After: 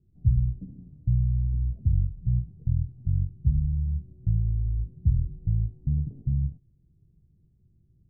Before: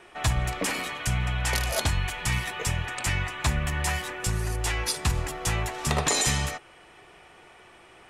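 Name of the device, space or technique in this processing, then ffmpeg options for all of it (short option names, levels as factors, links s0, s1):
the neighbour's flat through the wall: -af "lowpass=f=170:w=0.5412,lowpass=f=170:w=1.3066,equalizer=f=110:t=o:w=0.77:g=3,volume=1.41"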